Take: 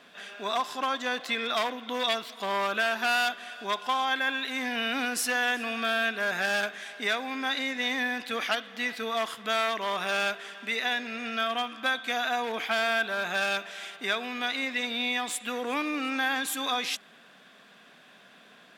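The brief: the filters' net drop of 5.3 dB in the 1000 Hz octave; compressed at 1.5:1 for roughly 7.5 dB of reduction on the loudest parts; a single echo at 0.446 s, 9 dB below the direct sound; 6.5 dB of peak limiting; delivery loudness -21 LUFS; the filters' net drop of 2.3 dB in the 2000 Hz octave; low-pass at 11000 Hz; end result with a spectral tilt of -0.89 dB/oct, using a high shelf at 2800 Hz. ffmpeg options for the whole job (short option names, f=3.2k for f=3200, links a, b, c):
-af "lowpass=11k,equalizer=f=1k:t=o:g=-8,equalizer=f=2k:t=o:g=-3,highshelf=f=2.8k:g=7,acompressor=threshold=-43dB:ratio=1.5,alimiter=level_in=2dB:limit=-24dB:level=0:latency=1,volume=-2dB,aecho=1:1:446:0.355,volume=15dB"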